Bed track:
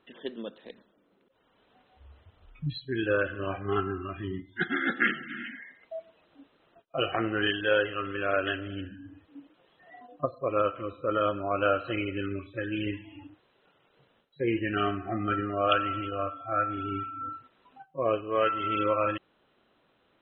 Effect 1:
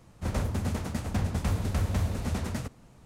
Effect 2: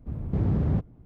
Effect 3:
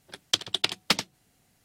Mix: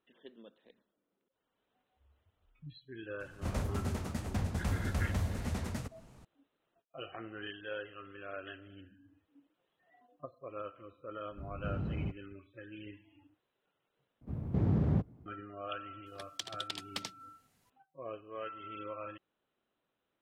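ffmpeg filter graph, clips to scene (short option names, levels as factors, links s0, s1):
-filter_complex "[2:a]asplit=2[s0][s1];[0:a]volume=0.15[s2];[1:a]acompressor=mode=upward:threshold=0.00631:ratio=2.5:attack=3.2:release=140:knee=2.83:detection=peak[s3];[s1]highpass=81[s4];[3:a]acompressor=threshold=0.0447:ratio=6:attack=3.2:release=140:knee=1:detection=peak[s5];[s2]asplit=2[s6][s7];[s6]atrim=end=14.214[s8];[s4]atrim=end=1.05,asetpts=PTS-STARTPTS,volume=0.668[s9];[s7]atrim=start=15.256[s10];[s3]atrim=end=3.05,asetpts=PTS-STARTPTS,volume=0.531,afade=t=in:d=0.004:c=hsin,afade=t=out:st=3.046:d=0.004:c=hsin,adelay=3200[s11];[s0]atrim=end=1.05,asetpts=PTS-STARTPTS,volume=0.237,afade=t=in:d=0.004:c=hsin,afade=t=out:st=1.046:d=0.004:c=hsin,adelay=11310[s12];[s5]atrim=end=1.64,asetpts=PTS-STARTPTS,volume=0.447,afade=t=in:d=0.004:c=hsin,afade=t=out:st=1.636:d=0.004:c=hsin,adelay=16060[s13];[s8][s9]acrossfade=d=0.004:c1=hsin:c2=hsin[s14];[s14][s10]acrossfade=d=0.004:c1=hsin:c2=hsin[s15];[s15][s11][s12][s13]amix=inputs=4:normalize=0"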